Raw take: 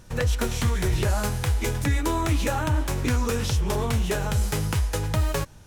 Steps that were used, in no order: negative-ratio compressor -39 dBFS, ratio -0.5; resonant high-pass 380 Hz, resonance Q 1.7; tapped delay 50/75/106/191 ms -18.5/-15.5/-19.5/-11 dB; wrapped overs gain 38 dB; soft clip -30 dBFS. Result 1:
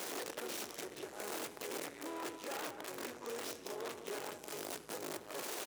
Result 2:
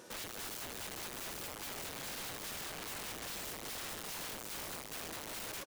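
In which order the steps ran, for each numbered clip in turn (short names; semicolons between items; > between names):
soft clip > negative-ratio compressor > tapped delay > wrapped overs > resonant high-pass; tapped delay > soft clip > resonant high-pass > wrapped overs > negative-ratio compressor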